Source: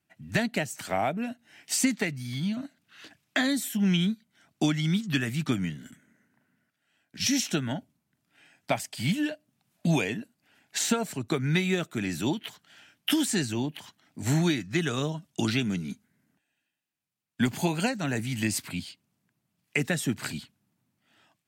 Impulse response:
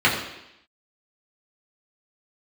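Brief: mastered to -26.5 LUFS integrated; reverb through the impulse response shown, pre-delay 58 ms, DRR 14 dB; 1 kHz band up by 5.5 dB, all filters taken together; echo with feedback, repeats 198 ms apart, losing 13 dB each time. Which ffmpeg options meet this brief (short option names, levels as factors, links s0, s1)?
-filter_complex "[0:a]equalizer=f=1000:t=o:g=8,aecho=1:1:198|396|594:0.224|0.0493|0.0108,asplit=2[s0][s1];[1:a]atrim=start_sample=2205,adelay=58[s2];[s1][s2]afir=irnorm=-1:irlink=0,volume=0.0188[s3];[s0][s3]amix=inputs=2:normalize=0,volume=1.12"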